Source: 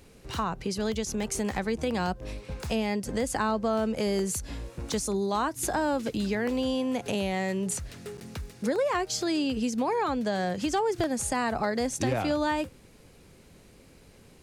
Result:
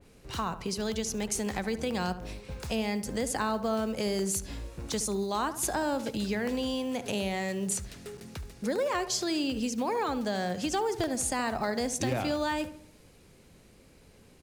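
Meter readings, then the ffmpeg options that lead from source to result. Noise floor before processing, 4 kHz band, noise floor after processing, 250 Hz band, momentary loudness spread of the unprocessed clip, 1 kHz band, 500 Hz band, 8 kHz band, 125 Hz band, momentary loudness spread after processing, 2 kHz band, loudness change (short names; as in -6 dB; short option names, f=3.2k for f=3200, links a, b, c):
-55 dBFS, +0.5 dB, -57 dBFS, -2.5 dB, 7 LU, -2.5 dB, -2.5 dB, +1.0 dB, -2.5 dB, 6 LU, -2.0 dB, -2.0 dB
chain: -filter_complex "[0:a]acrusher=bits=9:mode=log:mix=0:aa=0.000001,asplit=2[a][b];[b]adelay=72,lowpass=f=2k:p=1,volume=-12dB,asplit=2[c][d];[d]adelay=72,lowpass=f=2k:p=1,volume=0.5,asplit=2[e][f];[f]adelay=72,lowpass=f=2k:p=1,volume=0.5,asplit=2[g][h];[h]adelay=72,lowpass=f=2k:p=1,volume=0.5,asplit=2[i][j];[j]adelay=72,lowpass=f=2k:p=1,volume=0.5[k];[a][c][e][g][i][k]amix=inputs=6:normalize=0,adynamicequalizer=threshold=0.00708:dfrequency=2500:dqfactor=0.7:tfrequency=2500:tqfactor=0.7:attack=5:release=100:ratio=0.375:range=2:mode=boostabove:tftype=highshelf,volume=-3dB"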